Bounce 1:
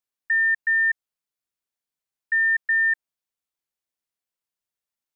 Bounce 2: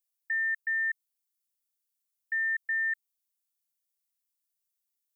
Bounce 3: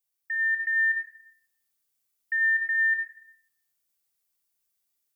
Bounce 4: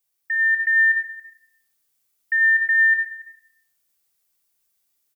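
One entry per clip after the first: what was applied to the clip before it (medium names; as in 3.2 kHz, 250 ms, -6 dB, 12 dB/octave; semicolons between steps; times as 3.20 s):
differentiator; trim +3 dB
level rider gain up to 4 dB; simulated room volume 2900 m³, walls furnished, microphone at 3.6 m
delay 280 ms -18.5 dB; trim +6.5 dB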